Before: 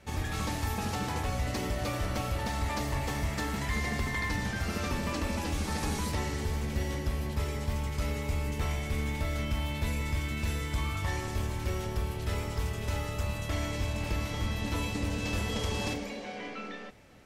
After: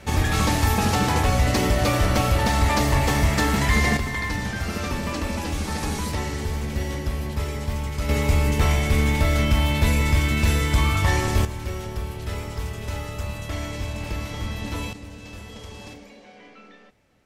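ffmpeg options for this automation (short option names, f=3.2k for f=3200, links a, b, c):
-af "asetnsamples=n=441:p=0,asendcmd='3.97 volume volume 5dB;8.09 volume volume 12dB;11.45 volume volume 2.5dB;14.93 volume volume -7.5dB',volume=12dB"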